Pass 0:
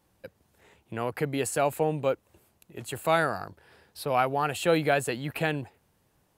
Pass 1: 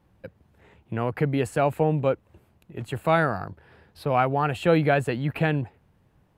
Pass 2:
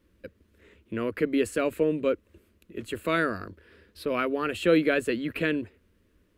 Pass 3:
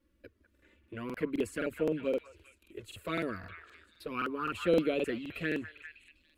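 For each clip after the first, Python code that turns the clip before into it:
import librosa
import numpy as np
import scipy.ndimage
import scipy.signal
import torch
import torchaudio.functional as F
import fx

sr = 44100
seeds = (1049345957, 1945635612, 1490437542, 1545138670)

y1 = fx.bass_treble(x, sr, bass_db=7, treble_db=-13)
y1 = y1 * librosa.db_to_amplitude(2.5)
y2 = fx.fixed_phaser(y1, sr, hz=330.0, stages=4)
y2 = y2 * librosa.db_to_amplitude(2.0)
y3 = fx.env_flanger(y2, sr, rest_ms=3.6, full_db=-19.5)
y3 = fx.echo_stepped(y3, sr, ms=199, hz=1200.0, octaves=0.7, feedback_pct=70, wet_db=-7)
y3 = fx.buffer_crackle(y3, sr, first_s=0.53, period_s=0.26, block=2048, kind='repeat')
y3 = y3 * librosa.db_to_amplitude(-5.0)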